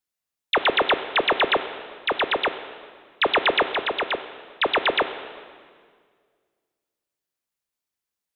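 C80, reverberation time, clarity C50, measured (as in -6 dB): 12.0 dB, 1.9 s, 11.0 dB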